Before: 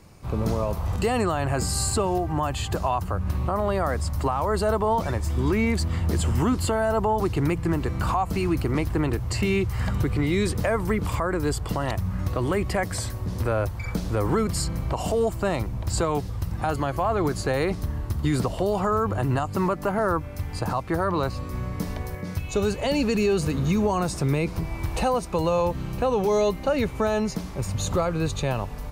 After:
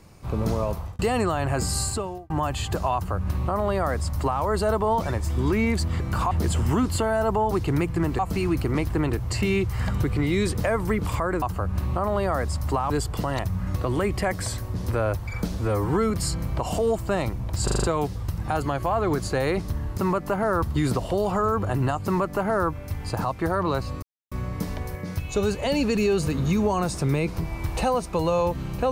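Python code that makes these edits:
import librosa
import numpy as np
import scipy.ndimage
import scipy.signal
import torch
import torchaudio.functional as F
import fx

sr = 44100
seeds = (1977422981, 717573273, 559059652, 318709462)

y = fx.edit(x, sr, fx.fade_out_span(start_s=0.7, length_s=0.29),
    fx.fade_out_span(start_s=1.76, length_s=0.54),
    fx.duplicate(start_s=2.94, length_s=1.48, to_s=11.42),
    fx.move(start_s=7.88, length_s=0.31, to_s=6.0),
    fx.stretch_span(start_s=14.07, length_s=0.37, factor=1.5),
    fx.stutter(start_s=15.97, slice_s=0.04, count=6),
    fx.duplicate(start_s=19.53, length_s=0.65, to_s=18.11),
    fx.insert_silence(at_s=21.51, length_s=0.29), tone=tone)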